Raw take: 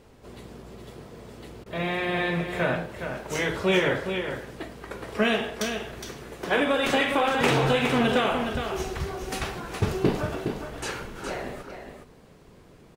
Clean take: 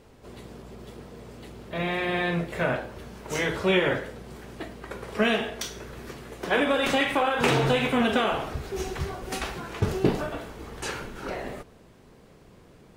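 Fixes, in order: clip repair -12.5 dBFS; interpolate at 1.64, 19 ms; inverse comb 0.414 s -7.5 dB

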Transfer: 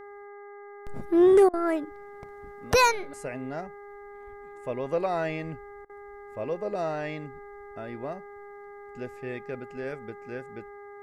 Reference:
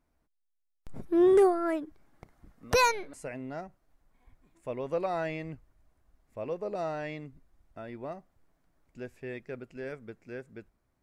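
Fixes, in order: de-hum 406.9 Hz, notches 5; interpolate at 1.49/5.85, 44 ms; gain 0 dB, from 0.62 s -3.5 dB

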